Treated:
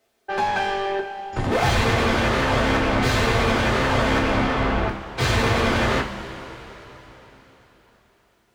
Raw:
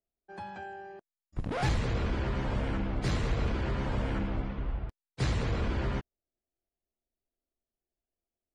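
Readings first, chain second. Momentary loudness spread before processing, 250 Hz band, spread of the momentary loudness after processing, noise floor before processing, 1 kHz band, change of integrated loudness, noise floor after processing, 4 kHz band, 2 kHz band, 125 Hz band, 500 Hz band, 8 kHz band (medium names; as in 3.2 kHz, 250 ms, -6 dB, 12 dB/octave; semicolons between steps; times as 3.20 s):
13 LU, +11.5 dB, 11 LU, under -85 dBFS, +17.0 dB, +11.5 dB, -63 dBFS, +17.0 dB, +18.0 dB, +7.5 dB, +15.5 dB, +16.0 dB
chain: overdrive pedal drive 31 dB, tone 2.7 kHz, clips at -21 dBFS; two-slope reverb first 0.27 s, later 4.2 s, from -18 dB, DRR 0 dB; trim +4.5 dB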